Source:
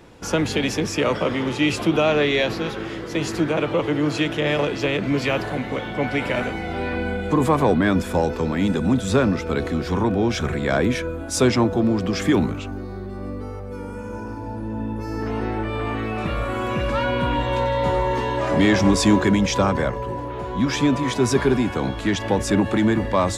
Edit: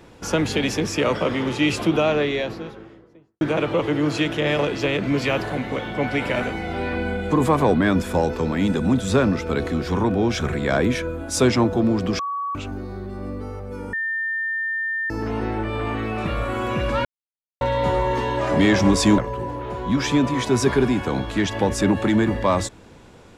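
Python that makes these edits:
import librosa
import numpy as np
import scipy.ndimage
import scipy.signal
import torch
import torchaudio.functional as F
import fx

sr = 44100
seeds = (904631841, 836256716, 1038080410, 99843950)

y = fx.studio_fade_out(x, sr, start_s=1.75, length_s=1.66)
y = fx.edit(y, sr, fx.bleep(start_s=12.19, length_s=0.36, hz=1130.0, db=-23.5),
    fx.bleep(start_s=13.93, length_s=1.17, hz=1800.0, db=-22.0),
    fx.silence(start_s=17.05, length_s=0.56),
    fx.cut(start_s=19.18, length_s=0.69), tone=tone)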